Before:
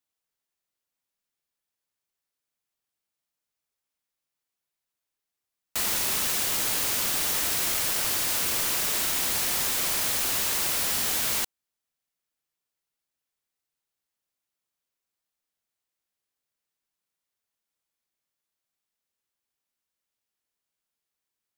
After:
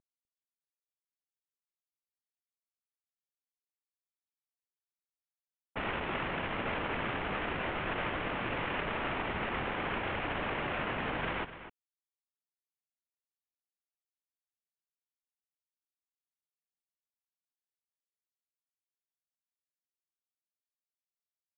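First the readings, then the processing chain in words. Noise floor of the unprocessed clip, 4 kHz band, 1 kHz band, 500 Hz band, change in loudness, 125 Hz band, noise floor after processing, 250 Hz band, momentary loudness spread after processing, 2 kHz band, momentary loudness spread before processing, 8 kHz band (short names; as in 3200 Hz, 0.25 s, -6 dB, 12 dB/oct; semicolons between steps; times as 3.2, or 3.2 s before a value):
under -85 dBFS, -14.0 dB, +1.0 dB, +2.5 dB, -11.0 dB, +3.0 dB, under -85 dBFS, +3.0 dB, 2 LU, -2.0 dB, 1 LU, under -40 dB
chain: CVSD 16 kbps; echo 0.25 s -12.5 dB; low-pass opened by the level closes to 900 Hz, open at -37 dBFS; gain +2 dB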